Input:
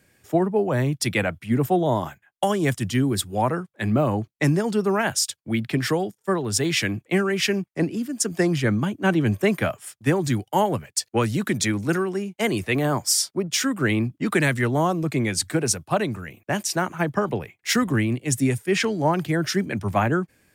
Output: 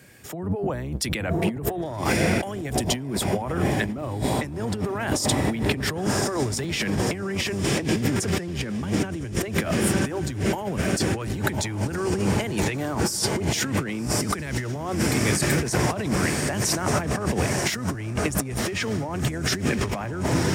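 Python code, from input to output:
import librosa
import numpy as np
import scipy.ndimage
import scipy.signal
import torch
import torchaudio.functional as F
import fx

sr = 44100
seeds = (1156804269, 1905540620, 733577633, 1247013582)

y = fx.octave_divider(x, sr, octaves=1, level_db=-1.0)
y = fx.pre_emphasis(y, sr, coefficient=0.8, at=(14.98, 15.59), fade=0.02)
y = fx.echo_diffused(y, sr, ms=1087, feedback_pct=68, wet_db=-12.5)
y = fx.leveller(y, sr, passes=1, at=(1.83, 2.64))
y = fx.over_compress(y, sr, threshold_db=-29.0, ratio=-1.0)
y = scipy.signal.sosfilt(scipy.signal.butter(2, 78.0, 'highpass', fs=sr, output='sos'), y)
y = F.gain(torch.from_numpy(y), 3.5).numpy()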